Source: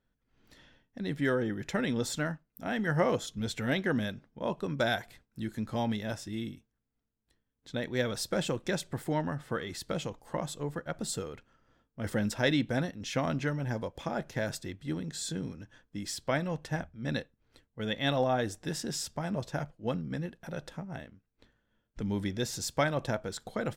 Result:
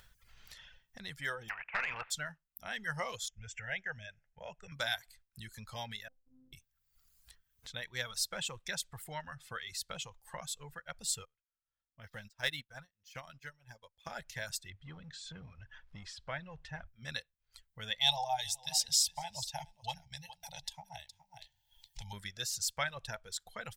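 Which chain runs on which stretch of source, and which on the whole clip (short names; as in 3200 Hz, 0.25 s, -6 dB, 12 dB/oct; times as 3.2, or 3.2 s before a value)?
1.48–2.1 spectral contrast lowered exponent 0.38 + Chebyshev low-pass 2600 Hz, order 5 + overdrive pedal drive 12 dB, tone 2000 Hz, clips at -16 dBFS
3.28–4.72 steep low-pass 7600 Hz 72 dB/oct + fixed phaser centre 1100 Hz, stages 6
6.08–6.53 ladder low-pass 430 Hz, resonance 50% + compressor 2:1, threshold -45 dBFS + robotiser 258 Hz
11.25–14.07 median filter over 5 samples + upward expander 2.5:1, over -42 dBFS
14.7–16.88 G.711 law mismatch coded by mu + upward compressor, threshold -50 dBFS + tape spacing loss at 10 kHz 27 dB
18.01–22.13 EQ curve 140 Hz 0 dB, 360 Hz -25 dB, 860 Hz +14 dB, 1200 Hz -20 dB, 2000 Hz -2 dB, 4000 Hz +9 dB, 7700 Hz +6 dB + echo 0.416 s -13.5 dB
whole clip: reverb removal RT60 1.3 s; passive tone stack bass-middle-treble 10-0-10; upward compressor, threshold -48 dBFS; gain +3 dB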